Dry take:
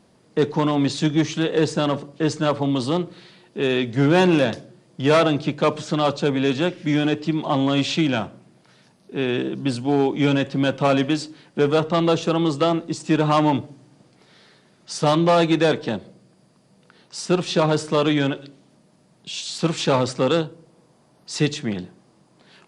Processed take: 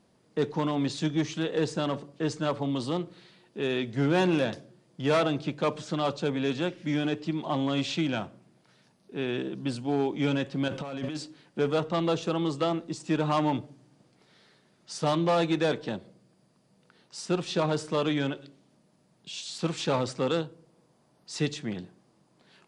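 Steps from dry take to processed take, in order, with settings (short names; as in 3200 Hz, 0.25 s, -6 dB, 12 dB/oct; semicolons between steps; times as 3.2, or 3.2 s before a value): 10.68–11.17 negative-ratio compressor -26 dBFS, ratio -1; gain -8 dB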